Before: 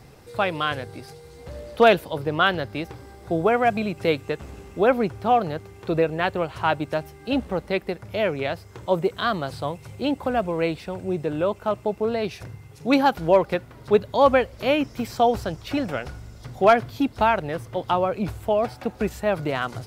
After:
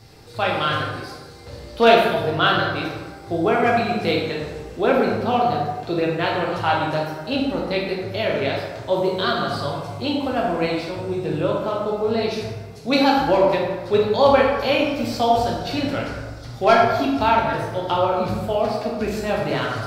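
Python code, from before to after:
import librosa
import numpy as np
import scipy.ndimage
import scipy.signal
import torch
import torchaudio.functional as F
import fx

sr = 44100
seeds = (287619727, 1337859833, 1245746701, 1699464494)

y = fx.peak_eq(x, sr, hz=4400.0, db=8.5, octaves=0.99)
y = fx.rev_plate(y, sr, seeds[0], rt60_s=1.3, hf_ratio=0.55, predelay_ms=0, drr_db=-3.5)
y = F.gain(torch.from_numpy(y), -3.0).numpy()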